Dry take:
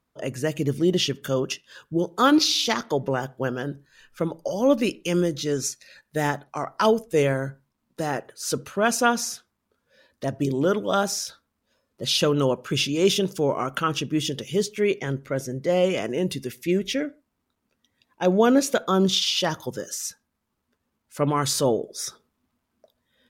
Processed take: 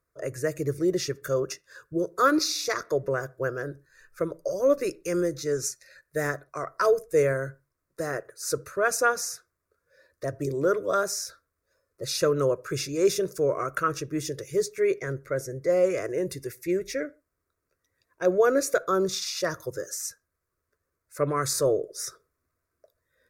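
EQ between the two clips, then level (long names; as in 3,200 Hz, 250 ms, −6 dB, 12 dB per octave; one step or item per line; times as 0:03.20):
phaser with its sweep stopped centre 840 Hz, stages 6
0.0 dB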